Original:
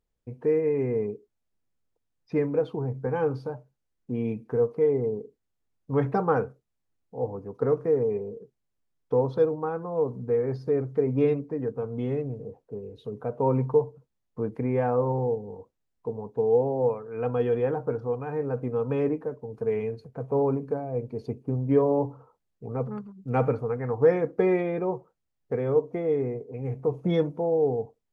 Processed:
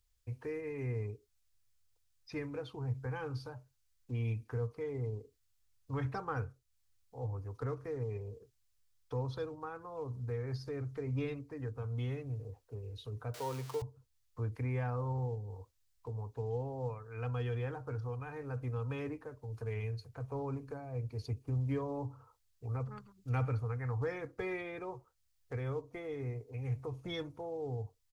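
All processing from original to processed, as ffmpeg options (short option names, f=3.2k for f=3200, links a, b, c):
-filter_complex "[0:a]asettb=1/sr,asplit=3[a][b][c];[a]atrim=end=13.344[d];[b]atrim=start=13.34:end=13.82,asetpts=PTS-STARTPTS,afade=t=in:d=0.004:c=qsin,afade=t=out:st=0.476:d=0.004:c=qsin,aeval=exprs='val(0)+0.5*0.0133*sgn(val(0))':c=same,highpass=130,lowshelf=f=310:t=q:w=1.5:g=-6[e];[c]atrim=start=13.816[f];[d][e]acrossfade=d=0.004:c1=hsin:c2=qsin[g];[g][f]acrossfade=d=0.004:c1=qsin:c2=hsin,firequalizer=gain_entry='entry(110,0);entry(160,-26);entry(280,-15);entry(440,-16);entry(1200,-4);entry(4500,5)':delay=0.05:min_phase=1,acrossover=split=280[h][i];[i]acompressor=threshold=-58dB:ratio=1.5[j];[h][j]amix=inputs=2:normalize=0,volume=4.5dB"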